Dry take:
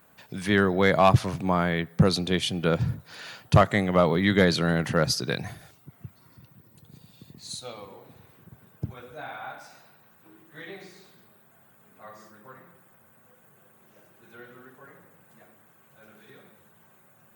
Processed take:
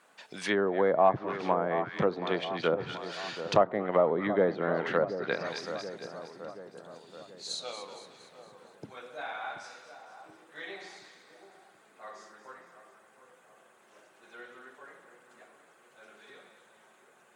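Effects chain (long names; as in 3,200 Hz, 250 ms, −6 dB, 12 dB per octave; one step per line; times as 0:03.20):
band-pass filter 390–7,100 Hz
high-shelf EQ 4,000 Hz +4.5 dB
noise that follows the level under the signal 34 dB
on a send: echo with a time of its own for lows and highs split 1,200 Hz, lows 728 ms, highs 231 ms, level −11 dB
on the sum: treble cut that deepens with the level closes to 780 Hz, closed at −21 dBFS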